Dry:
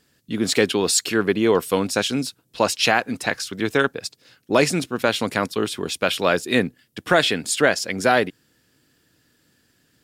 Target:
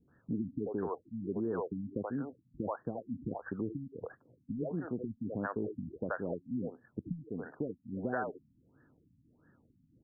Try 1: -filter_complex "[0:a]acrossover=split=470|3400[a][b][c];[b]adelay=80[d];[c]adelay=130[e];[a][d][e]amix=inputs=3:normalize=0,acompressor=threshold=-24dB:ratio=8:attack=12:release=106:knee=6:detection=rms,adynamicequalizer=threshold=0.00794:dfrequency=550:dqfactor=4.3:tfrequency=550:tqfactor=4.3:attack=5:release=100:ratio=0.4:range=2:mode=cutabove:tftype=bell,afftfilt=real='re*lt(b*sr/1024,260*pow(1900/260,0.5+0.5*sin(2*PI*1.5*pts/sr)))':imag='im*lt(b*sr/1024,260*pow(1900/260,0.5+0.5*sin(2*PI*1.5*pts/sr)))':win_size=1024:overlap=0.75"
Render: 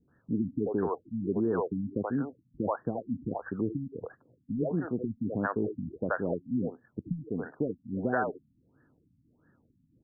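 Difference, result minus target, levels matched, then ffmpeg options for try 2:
compressor: peak gain reduction -6.5 dB
-filter_complex "[0:a]acrossover=split=470|3400[a][b][c];[b]adelay=80[d];[c]adelay=130[e];[a][d][e]amix=inputs=3:normalize=0,acompressor=threshold=-31.5dB:ratio=8:attack=12:release=106:knee=6:detection=rms,adynamicequalizer=threshold=0.00794:dfrequency=550:dqfactor=4.3:tfrequency=550:tqfactor=4.3:attack=5:release=100:ratio=0.4:range=2:mode=cutabove:tftype=bell,afftfilt=real='re*lt(b*sr/1024,260*pow(1900/260,0.5+0.5*sin(2*PI*1.5*pts/sr)))':imag='im*lt(b*sr/1024,260*pow(1900/260,0.5+0.5*sin(2*PI*1.5*pts/sr)))':win_size=1024:overlap=0.75"

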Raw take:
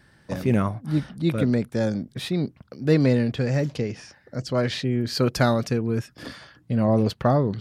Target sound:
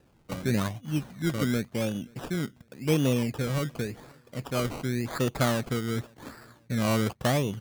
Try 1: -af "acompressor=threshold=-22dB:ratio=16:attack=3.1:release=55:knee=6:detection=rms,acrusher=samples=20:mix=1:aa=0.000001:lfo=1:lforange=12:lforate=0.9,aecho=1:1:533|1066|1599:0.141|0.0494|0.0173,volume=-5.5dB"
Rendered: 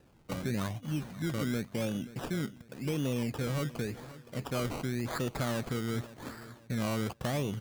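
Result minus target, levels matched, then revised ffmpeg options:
compressor: peak gain reduction +11 dB; echo-to-direct +11 dB
-af "acrusher=samples=20:mix=1:aa=0.000001:lfo=1:lforange=12:lforate=0.9,aecho=1:1:533|1066:0.0398|0.0139,volume=-5.5dB"

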